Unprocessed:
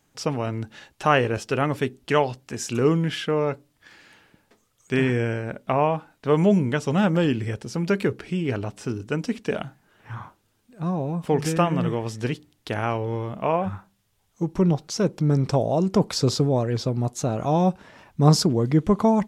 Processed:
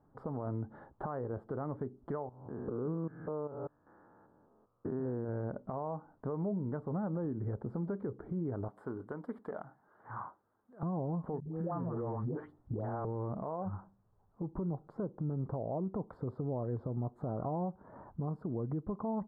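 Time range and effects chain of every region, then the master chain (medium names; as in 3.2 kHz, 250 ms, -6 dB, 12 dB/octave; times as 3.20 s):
2.29–5.29 s: spectrogram pixelated in time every 200 ms + low-pass 1.6 kHz 24 dB/octave + bass shelf 150 Hz -7.5 dB
8.68–10.83 s: tilt EQ +4.5 dB/octave + loudspeaker Doppler distortion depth 0.14 ms
11.40–13.05 s: phase dispersion highs, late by 149 ms, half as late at 510 Hz + compression 4:1, threshold -32 dBFS
whole clip: compression 16:1, threshold -31 dBFS; inverse Chebyshev low-pass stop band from 2.4 kHz, stop band 40 dB; peak limiter -28.5 dBFS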